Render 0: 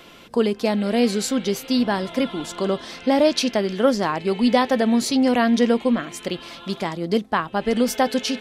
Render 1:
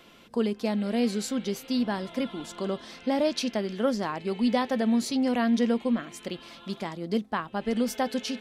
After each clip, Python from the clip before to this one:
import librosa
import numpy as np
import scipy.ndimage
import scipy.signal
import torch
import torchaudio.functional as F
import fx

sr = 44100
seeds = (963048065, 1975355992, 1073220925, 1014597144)

y = fx.peak_eq(x, sr, hz=220.0, db=4.5, octaves=0.31)
y = y * 10.0 ** (-8.5 / 20.0)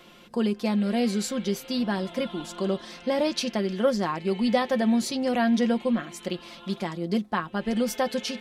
y = x + 0.49 * np.pad(x, (int(5.6 * sr / 1000.0), 0))[:len(x)]
y = y * 10.0 ** (1.5 / 20.0)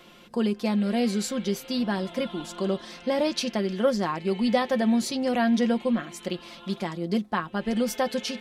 y = x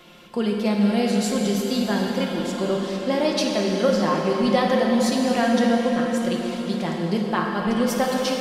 y = fx.rev_plate(x, sr, seeds[0], rt60_s=4.1, hf_ratio=0.75, predelay_ms=0, drr_db=-0.5)
y = y * 10.0 ** (2.0 / 20.0)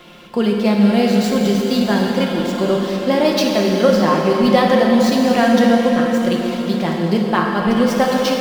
y = scipy.signal.medfilt(x, 5)
y = y * 10.0 ** (6.5 / 20.0)